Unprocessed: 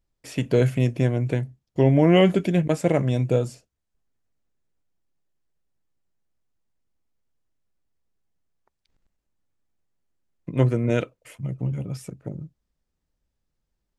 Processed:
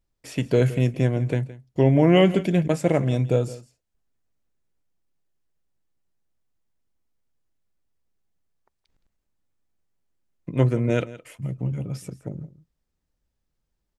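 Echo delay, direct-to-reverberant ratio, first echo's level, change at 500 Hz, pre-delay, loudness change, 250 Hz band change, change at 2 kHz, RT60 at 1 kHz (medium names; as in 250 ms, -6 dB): 167 ms, no reverb, -17.5 dB, 0.0 dB, no reverb, 0.0 dB, 0.0 dB, 0.0 dB, no reverb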